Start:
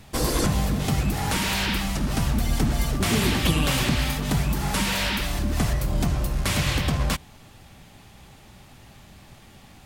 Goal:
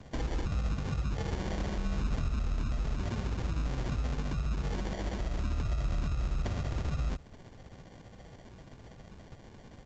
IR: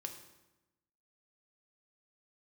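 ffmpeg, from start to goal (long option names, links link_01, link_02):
-filter_complex "[0:a]aresample=8000,aresample=44100,acrossover=split=100[link_01][link_02];[link_02]acompressor=threshold=-34dB:ratio=6[link_03];[link_01][link_03]amix=inputs=2:normalize=0,tremolo=f=15:d=0.44,alimiter=level_in=0.5dB:limit=-24dB:level=0:latency=1:release=50,volume=-0.5dB,asettb=1/sr,asplit=3[link_04][link_05][link_06];[link_04]atrim=end=1.184[link_07];[link_05]atrim=start=1.18:end=2.34,asetpts=PTS-STARTPTS,afade=type=in:duration=0.004:curve=qsin,afade=type=out:start_time=1.156:duration=0.004:curve=qsin,asplit=2[link_08][link_09];[link_09]adelay=25,volume=-6.5dB[link_10];[link_08][link_10]amix=inputs=2:normalize=0,atrim=end_sample=51156[link_11];[link_06]atrim=start=2.336[link_12];[link_07][link_11]acrossfade=duration=0.004:curve1=hsin:curve2=qsin[link_13];[link_13][link_12]acrossfade=duration=0.004:curve1=qsin:curve2=hsin,acrusher=samples=34:mix=1:aa=0.000001" -ar 16000 -c:a pcm_alaw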